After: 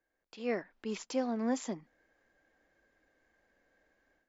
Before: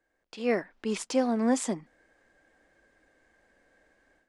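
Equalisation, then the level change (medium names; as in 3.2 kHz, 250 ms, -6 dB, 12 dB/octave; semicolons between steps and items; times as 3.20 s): brick-wall FIR low-pass 7.5 kHz; -7.0 dB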